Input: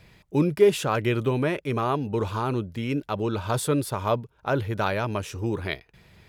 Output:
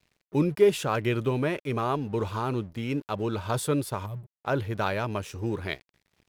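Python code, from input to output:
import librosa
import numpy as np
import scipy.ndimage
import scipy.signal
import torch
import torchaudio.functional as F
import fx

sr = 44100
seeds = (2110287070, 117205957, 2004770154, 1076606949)

y = fx.spec_box(x, sr, start_s=4.06, length_s=0.25, low_hz=210.0, high_hz=7500.0, gain_db=-22)
y = np.sign(y) * np.maximum(np.abs(y) - 10.0 ** (-49.5 / 20.0), 0.0)
y = F.gain(torch.from_numpy(y), -2.0).numpy()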